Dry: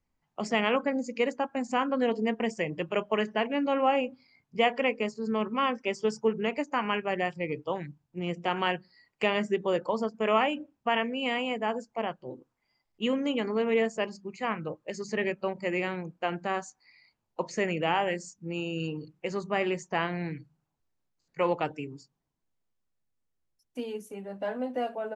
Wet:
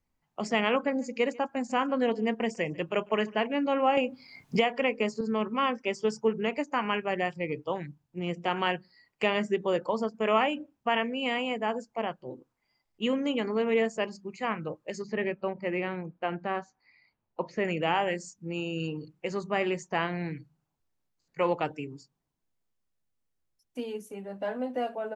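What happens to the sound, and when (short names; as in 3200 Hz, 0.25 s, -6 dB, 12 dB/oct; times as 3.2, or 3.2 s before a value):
0.7–3.43 echo 0.147 s -24 dB
3.97–5.21 three-band squash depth 100%
15.02–17.65 air absorption 230 m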